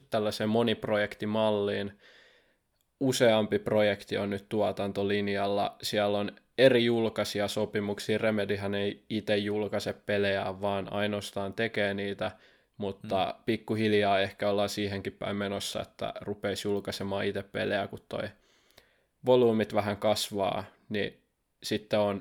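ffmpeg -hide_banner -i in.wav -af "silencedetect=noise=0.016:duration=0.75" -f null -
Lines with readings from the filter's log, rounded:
silence_start: 1.89
silence_end: 3.01 | silence_duration: 1.12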